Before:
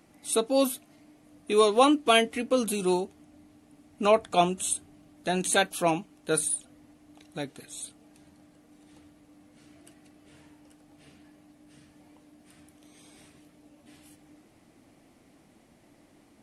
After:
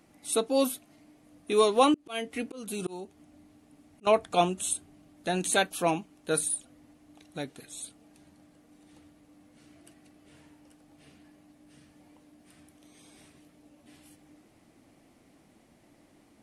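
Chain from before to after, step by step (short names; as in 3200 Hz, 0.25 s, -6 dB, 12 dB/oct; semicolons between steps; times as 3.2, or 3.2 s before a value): 1.94–4.07 auto swell 0.345 s; gain -1.5 dB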